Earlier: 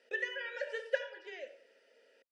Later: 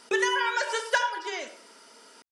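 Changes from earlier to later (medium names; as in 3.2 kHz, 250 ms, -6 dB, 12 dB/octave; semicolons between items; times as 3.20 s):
background +8.5 dB; master: remove vowel filter e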